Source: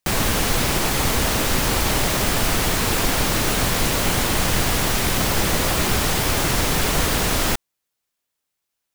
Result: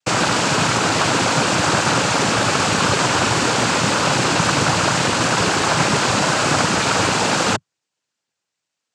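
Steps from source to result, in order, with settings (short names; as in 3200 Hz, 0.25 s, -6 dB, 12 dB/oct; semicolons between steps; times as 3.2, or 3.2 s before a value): dynamic EQ 1000 Hz, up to +7 dB, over -42 dBFS, Q 2.3; noise vocoder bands 8; gain +4 dB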